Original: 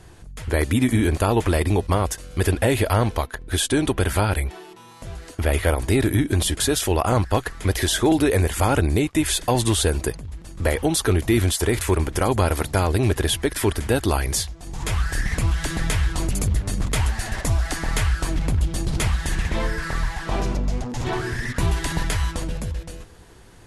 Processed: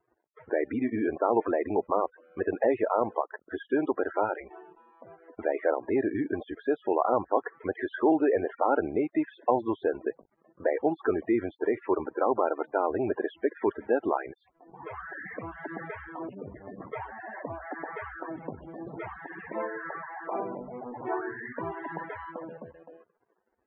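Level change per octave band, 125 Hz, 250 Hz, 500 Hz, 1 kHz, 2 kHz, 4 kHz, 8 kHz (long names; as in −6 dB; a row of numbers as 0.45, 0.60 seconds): −26.0 dB, −7.5 dB, −3.0 dB, −3.5 dB, −10.0 dB, below −30 dB, below −40 dB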